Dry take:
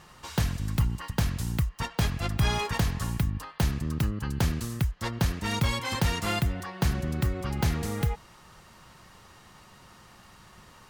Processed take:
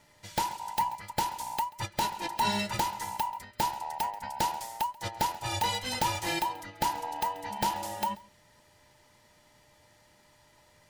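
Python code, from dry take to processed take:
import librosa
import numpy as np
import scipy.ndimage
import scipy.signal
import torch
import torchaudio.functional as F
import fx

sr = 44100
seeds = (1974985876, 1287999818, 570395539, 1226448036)

p1 = fx.band_invert(x, sr, width_hz=1000)
p2 = p1 + 10.0 ** (-58.0 / 20.0) * np.sin(2.0 * np.pi * 600.0 * np.arange(len(p1)) / sr)
p3 = 10.0 ** (-28.5 / 20.0) * np.tanh(p2 / 10.0 ** (-28.5 / 20.0))
p4 = p2 + (p3 * librosa.db_to_amplitude(-8.5))
p5 = fx.peak_eq(p4, sr, hz=1100.0, db=-7.0, octaves=2.2)
p6 = p5 + fx.echo_single(p5, sr, ms=135, db=-15.5, dry=0)
p7 = fx.upward_expand(p6, sr, threshold_db=-46.0, expansion=1.5)
y = p7 * librosa.db_to_amplitude(1.5)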